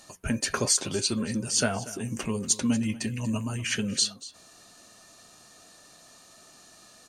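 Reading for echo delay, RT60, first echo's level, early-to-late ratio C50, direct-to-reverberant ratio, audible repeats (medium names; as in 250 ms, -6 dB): 237 ms, no reverb, -17.5 dB, no reverb, no reverb, 1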